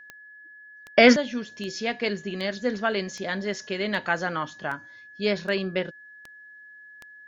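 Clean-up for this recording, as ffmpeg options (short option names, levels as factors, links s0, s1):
-af "adeclick=t=4,bandreject=f=1700:w=30"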